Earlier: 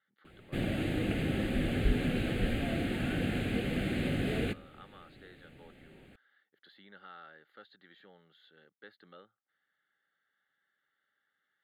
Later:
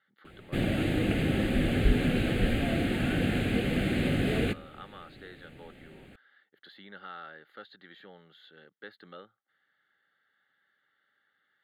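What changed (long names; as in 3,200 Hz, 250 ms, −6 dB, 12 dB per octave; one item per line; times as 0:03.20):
speech +7.0 dB
background +4.5 dB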